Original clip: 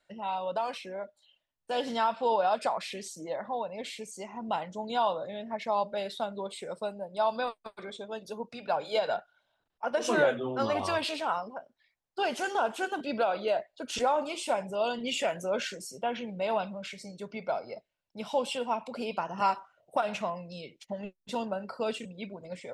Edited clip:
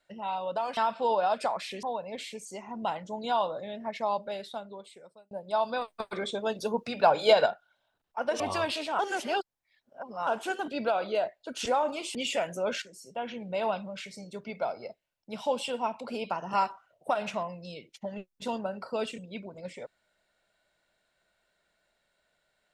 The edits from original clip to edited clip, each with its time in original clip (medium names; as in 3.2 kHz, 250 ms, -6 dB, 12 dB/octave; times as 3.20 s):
0.77–1.98 s: delete
3.04–3.49 s: delete
5.64–6.97 s: fade out
7.54–9.12 s: gain +8 dB
10.06–10.73 s: delete
11.32–12.60 s: reverse
14.48–15.02 s: delete
15.69–16.39 s: fade in, from -12 dB